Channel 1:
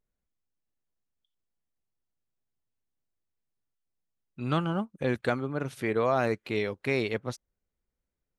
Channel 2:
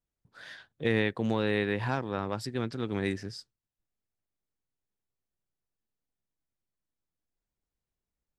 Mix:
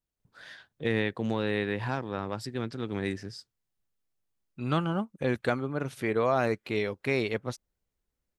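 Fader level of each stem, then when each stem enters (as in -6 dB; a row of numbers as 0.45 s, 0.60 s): 0.0 dB, -1.0 dB; 0.20 s, 0.00 s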